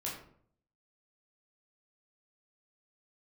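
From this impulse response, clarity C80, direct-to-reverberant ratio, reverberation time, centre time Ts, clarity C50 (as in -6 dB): 8.5 dB, -5.5 dB, 0.60 s, 37 ms, 5.0 dB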